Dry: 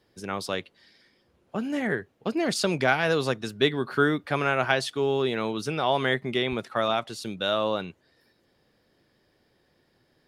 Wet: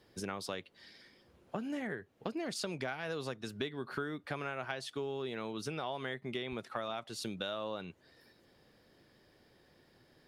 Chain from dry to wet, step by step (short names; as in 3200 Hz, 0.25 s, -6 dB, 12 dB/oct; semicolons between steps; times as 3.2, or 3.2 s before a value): compressor 6:1, threshold -38 dBFS, peak gain reduction 20 dB; gain +1.5 dB